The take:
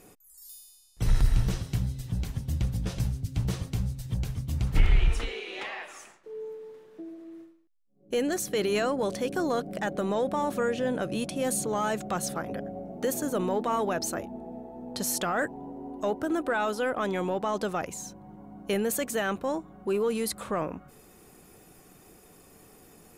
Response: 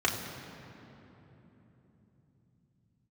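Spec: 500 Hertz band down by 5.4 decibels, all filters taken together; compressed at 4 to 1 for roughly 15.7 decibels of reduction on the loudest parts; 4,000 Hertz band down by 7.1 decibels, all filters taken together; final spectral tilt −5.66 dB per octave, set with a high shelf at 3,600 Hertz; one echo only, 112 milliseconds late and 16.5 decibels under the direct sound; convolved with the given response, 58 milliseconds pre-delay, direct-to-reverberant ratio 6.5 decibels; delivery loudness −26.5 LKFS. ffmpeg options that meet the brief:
-filter_complex "[0:a]equalizer=frequency=500:width_type=o:gain=-6.5,highshelf=frequency=3600:gain=-5,equalizer=frequency=4000:width_type=o:gain=-6.5,acompressor=threshold=-36dB:ratio=4,aecho=1:1:112:0.15,asplit=2[link_01][link_02];[1:a]atrim=start_sample=2205,adelay=58[link_03];[link_02][link_03]afir=irnorm=-1:irlink=0,volume=-17.5dB[link_04];[link_01][link_04]amix=inputs=2:normalize=0,volume=12.5dB"

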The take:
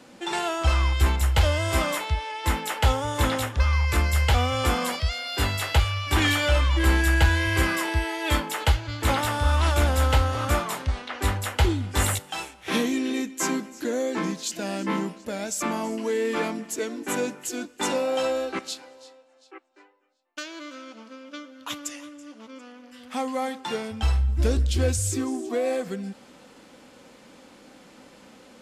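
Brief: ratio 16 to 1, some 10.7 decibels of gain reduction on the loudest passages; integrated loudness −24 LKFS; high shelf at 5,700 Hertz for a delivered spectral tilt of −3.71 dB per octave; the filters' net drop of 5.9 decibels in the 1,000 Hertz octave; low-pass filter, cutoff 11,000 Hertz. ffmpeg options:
ffmpeg -i in.wav -af "lowpass=11000,equalizer=frequency=1000:width_type=o:gain=-8,highshelf=frequency=5700:gain=8,acompressor=threshold=-25dB:ratio=16,volume=6.5dB" out.wav

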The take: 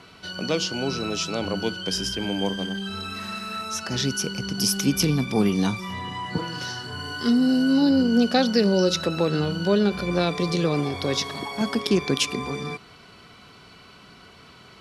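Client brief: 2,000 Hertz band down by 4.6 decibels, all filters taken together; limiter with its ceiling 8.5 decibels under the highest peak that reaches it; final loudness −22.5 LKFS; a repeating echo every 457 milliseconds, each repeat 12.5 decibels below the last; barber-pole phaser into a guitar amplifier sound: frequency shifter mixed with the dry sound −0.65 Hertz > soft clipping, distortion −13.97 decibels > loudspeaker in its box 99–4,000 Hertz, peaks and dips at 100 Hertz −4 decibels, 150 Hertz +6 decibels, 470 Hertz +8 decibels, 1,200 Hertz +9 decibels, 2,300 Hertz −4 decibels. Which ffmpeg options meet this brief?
ffmpeg -i in.wav -filter_complex "[0:a]equalizer=frequency=2000:width_type=o:gain=-8.5,alimiter=limit=-15.5dB:level=0:latency=1,aecho=1:1:457|914|1371:0.237|0.0569|0.0137,asplit=2[link_01][link_02];[link_02]afreqshift=-0.65[link_03];[link_01][link_03]amix=inputs=2:normalize=1,asoftclip=threshold=-23dB,highpass=99,equalizer=frequency=100:width_type=q:width=4:gain=-4,equalizer=frequency=150:width_type=q:width=4:gain=6,equalizer=frequency=470:width_type=q:width=4:gain=8,equalizer=frequency=1200:width_type=q:width=4:gain=9,equalizer=frequency=2300:width_type=q:width=4:gain=-4,lowpass=frequency=4000:width=0.5412,lowpass=frequency=4000:width=1.3066,volume=7.5dB" out.wav

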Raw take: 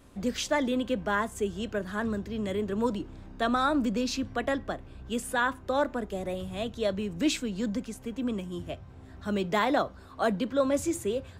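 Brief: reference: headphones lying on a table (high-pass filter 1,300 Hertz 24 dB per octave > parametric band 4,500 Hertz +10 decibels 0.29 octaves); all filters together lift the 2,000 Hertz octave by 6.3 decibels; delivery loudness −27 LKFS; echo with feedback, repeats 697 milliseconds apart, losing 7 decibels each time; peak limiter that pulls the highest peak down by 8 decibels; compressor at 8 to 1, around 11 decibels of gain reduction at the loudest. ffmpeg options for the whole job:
ffmpeg -i in.wav -af "equalizer=frequency=2000:width_type=o:gain=9,acompressor=threshold=-30dB:ratio=8,alimiter=level_in=3.5dB:limit=-24dB:level=0:latency=1,volume=-3.5dB,highpass=frequency=1300:width=0.5412,highpass=frequency=1300:width=1.3066,equalizer=frequency=4500:width_type=o:width=0.29:gain=10,aecho=1:1:697|1394|2091|2788|3485:0.447|0.201|0.0905|0.0407|0.0183,volume=14.5dB" out.wav

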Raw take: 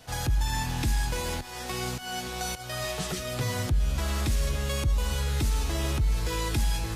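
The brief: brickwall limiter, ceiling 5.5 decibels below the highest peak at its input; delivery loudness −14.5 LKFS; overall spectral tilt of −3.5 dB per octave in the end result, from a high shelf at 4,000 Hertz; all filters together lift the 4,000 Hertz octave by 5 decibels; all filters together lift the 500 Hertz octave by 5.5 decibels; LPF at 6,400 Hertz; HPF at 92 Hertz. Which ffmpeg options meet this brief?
ffmpeg -i in.wav -af "highpass=92,lowpass=6400,equalizer=frequency=500:width_type=o:gain=6.5,highshelf=frequency=4000:gain=5,equalizer=frequency=4000:width_type=o:gain=4,volume=16dB,alimiter=limit=-5dB:level=0:latency=1" out.wav

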